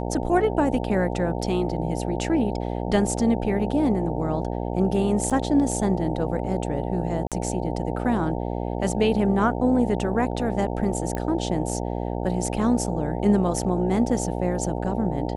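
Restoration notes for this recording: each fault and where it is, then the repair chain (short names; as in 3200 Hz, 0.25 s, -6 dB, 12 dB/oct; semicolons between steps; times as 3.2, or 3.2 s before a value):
buzz 60 Hz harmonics 15 -28 dBFS
5.3–5.31 gap 6.2 ms
7.27–7.32 gap 47 ms
11.15 pop -16 dBFS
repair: de-click; de-hum 60 Hz, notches 15; interpolate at 5.3, 6.2 ms; interpolate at 7.27, 47 ms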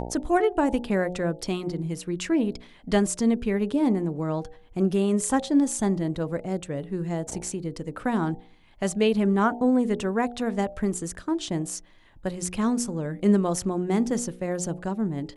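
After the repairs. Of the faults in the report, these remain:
none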